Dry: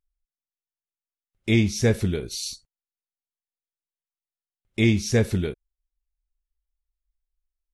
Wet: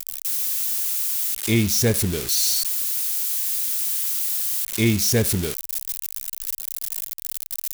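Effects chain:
spike at every zero crossing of −15 dBFS

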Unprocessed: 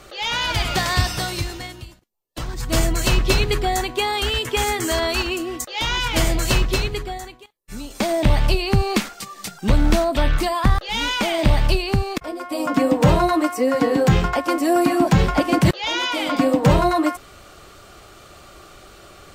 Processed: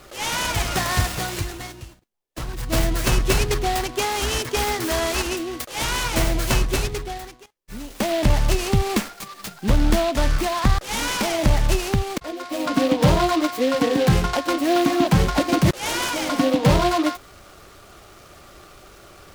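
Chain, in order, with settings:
short delay modulated by noise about 2,800 Hz, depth 0.058 ms
level −1.5 dB

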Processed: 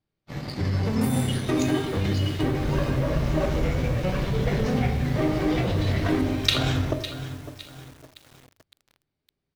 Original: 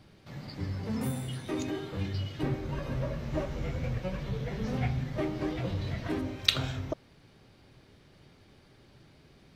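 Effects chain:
noise gate −47 dBFS, range −32 dB
leveller curve on the samples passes 1
in parallel at 0 dB: compressor whose output falls as the input rises −31 dBFS, ratio −0.5
on the sum: repeating echo 553 ms, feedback 25%, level −16 dB
on a send at −6 dB: convolution reverb RT60 0.80 s, pre-delay 3 ms
on the sum: feedback echo at a low word length 560 ms, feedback 55%, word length 6 bits, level −14.5 dB

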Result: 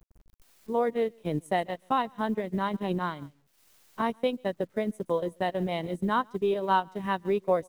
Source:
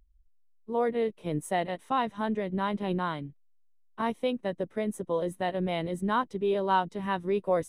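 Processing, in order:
single-tap delay 139 ms −19.5 dB
bit-depth reduction 10 bits, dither none
transient designer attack +3 dB, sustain −10 dB

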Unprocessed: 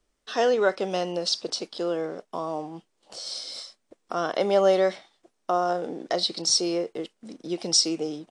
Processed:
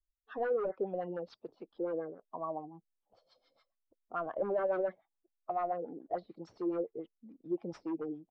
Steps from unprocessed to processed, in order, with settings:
spectral dynamics exaggerated over time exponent 1.5
gain into a clipping stage and back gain 26.5 dB
auto-filter low-pass sine 7 Hz 420–1,500 Hz
level −7 dB

